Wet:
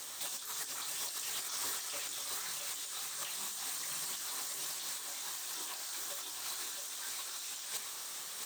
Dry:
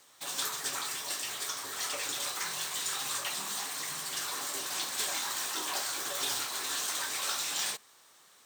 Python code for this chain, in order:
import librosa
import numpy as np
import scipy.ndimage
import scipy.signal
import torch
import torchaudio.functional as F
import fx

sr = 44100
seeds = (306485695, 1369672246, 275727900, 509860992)

p1 = fx.high_shelf(x, sr, hz=3800.0, db=8.5)
p2 = fx.over_compress(p1, sr, threshold_db=-41.0, ratio=-1.0)
p3 = p2 + fx.echo_single(p2, sr, ms=668, db=-6.0, dry=0)
y = p3 * librosa.db_to_amplitude(-1.0)